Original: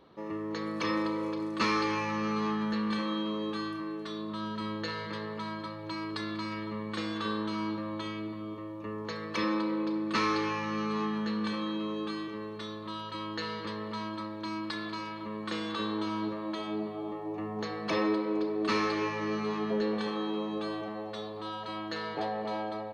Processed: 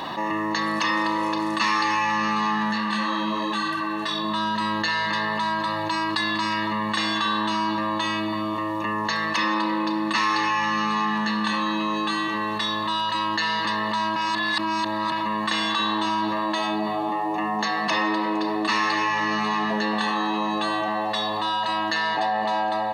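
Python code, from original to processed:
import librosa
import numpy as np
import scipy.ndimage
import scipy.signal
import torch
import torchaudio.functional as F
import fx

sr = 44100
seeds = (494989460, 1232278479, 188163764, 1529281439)

y = fx.detune_double(x, sr, cents=fx.line((2.71, 32.0), (4.23, 22.0)), at=(2.71, 4.23), fade=0.02)
y = fx.highpass(y, sr, hz=140.0, slope=24, at=(17.09, 17.88))
y = fx.edit(y, sr, fx.reverse_span(start_s=14.16, length_s=0.96), tone=tone)
y = fx.highpass(y, sr, hz=670.0, slope=6)
y = y + 0.76 * np.pad(y, (int(1.1 * sr / 1000.0), 0))[:len(y)]
y = fx.env_flatten(y, sr, amount_pct=70)
y = y * 10.0 ** (5.5 / 20.0)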